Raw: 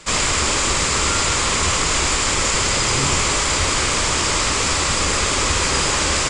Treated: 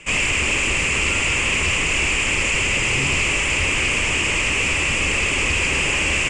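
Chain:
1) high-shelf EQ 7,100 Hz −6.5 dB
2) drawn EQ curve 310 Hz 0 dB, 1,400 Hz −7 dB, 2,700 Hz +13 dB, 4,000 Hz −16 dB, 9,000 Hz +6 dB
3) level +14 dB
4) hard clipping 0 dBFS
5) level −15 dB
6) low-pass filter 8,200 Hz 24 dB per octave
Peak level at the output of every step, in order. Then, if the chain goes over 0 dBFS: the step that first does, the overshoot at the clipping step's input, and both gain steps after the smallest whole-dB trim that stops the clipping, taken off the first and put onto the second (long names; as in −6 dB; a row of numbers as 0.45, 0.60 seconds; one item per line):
−5.5, −4.5, +9.5, 0.0, −15.0, −13.0 dBFS
step 3, 9.5 dB
step 3 +4 dB, step 5 −5 dB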